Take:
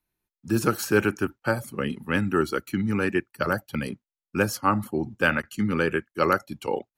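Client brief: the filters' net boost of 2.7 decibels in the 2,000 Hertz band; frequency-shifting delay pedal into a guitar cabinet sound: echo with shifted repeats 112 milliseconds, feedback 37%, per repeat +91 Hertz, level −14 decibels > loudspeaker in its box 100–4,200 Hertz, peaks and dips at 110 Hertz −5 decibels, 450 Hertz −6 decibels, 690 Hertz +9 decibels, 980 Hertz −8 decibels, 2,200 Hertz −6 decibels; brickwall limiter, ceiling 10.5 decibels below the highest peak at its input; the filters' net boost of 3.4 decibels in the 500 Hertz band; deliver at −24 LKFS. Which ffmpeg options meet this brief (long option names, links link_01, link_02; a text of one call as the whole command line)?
ffmpeg -i in.wav -filter_complex "[0:a]equalizer=frequency=500:width_type=o:gain=6,equalizer=frequency=2000:width_type=o:gain=5.5,alimiter=limit=-12.5dB:level=0:latency=1,asplit=5[link_01][link_02][link_03][link_04][link_05];[link_02]adelay=112,afreqshift=91,volume=-14dB[link_06];[link_03]adelay=224,afreqshift=182,volume=-22.6dB[link_07];[link_04]adelay=336,afreqshift=273,volume=-31.3dB[link_08];[link_05]adelay=448,afreqshift=364,volume=-39.9dB[link_09];[link_01][link_06][link_07][link_08][link_09]amix=inputs=5:normalize=0,highpass=100,equalizer=frequency=110:width_type=q:width=4:gain=-5,equalizer=frequency=450:width_type=q:width=4:gain=-6,equalizer=frequency=690:width_type=q:width=4:gain=9,equalizer=frequency=980:width_type=q:width=4:gain=-8,equalizer=frequency=2200:width_type=q:width=4:gain=-6,lowpass=frequency=4200:width=0.5412,lowpass=frequency=4200:width=1.3066,volume=3.5dB" out.wav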